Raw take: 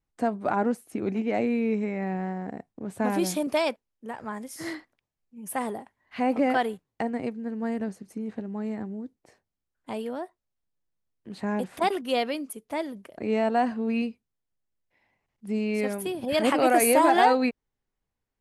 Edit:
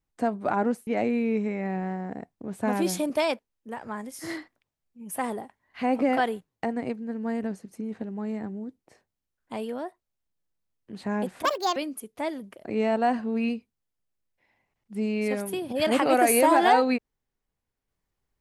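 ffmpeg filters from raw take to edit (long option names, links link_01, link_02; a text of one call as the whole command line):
ffmpeg -i in.wav -filter_complex "[0:a]asplit=4[link_01][link_02][link_03][link_04];[link_01]atrim=end=0.872[link_05];[link_02]atrim=start=1.238:end=11.824[link_06];[link_03]atrim=start=11.82:end=12.29,asetpts=PTS-STARTPTS,asetrate=66150,aresample=44100[link_07];[link_04]atrim=start=12.286[link_08];[link_05][link_06]acrossfade=duration=0.004:curve1=hsin:curve2=hsin[link_09];[link_09][link_07]acrossfade=duration=0.004:curve1=hsin:curve2=hsin[link_10];[link_10][link_08]acrossfade=duration=0.004:curve1=hsin:curve2=hsin" out.wav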